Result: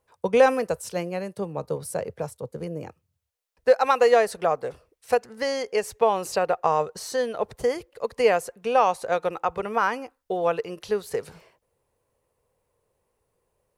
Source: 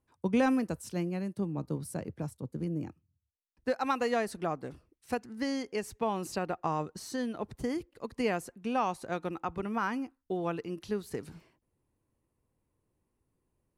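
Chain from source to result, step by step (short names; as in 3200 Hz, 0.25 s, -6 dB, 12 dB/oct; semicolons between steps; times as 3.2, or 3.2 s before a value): resonant low shelf 380 Hz -7.5 dB, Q 3; gain +8.5 dB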